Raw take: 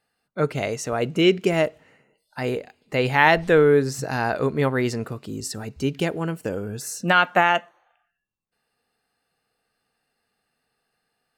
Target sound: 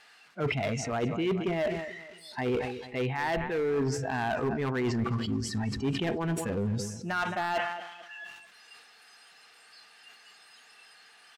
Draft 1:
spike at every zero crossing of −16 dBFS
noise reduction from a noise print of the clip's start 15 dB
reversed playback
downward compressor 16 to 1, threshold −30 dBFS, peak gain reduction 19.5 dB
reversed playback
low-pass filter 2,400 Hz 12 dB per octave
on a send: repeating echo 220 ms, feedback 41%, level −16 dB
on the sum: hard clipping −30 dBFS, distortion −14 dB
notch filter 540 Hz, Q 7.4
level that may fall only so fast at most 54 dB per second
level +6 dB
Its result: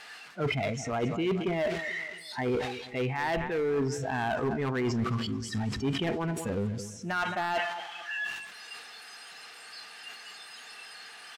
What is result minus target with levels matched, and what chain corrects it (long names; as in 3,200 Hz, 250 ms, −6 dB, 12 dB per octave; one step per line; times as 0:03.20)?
spike at every zero crossing: distortion +9 dB
spike at every zero crossing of −25.5 dBFS
noise reduction from a noise print of the clip's start 15 dB
reversed playback
downward compressor 16 to 1, threshold −30 dBFS, peak gain reduction 19.5 dB
reversed playback
low-pass filter 2,400 Hz 12 dB per octave
on a send: repeating echo 220 ms, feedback 41%, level −16 dB
on the sum: hard clipping −30 dBFS, distortion −14 dB
notch filter 540 Hz, Q 7.4
level that may fall only so fast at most 54 dB per second
level +6 dB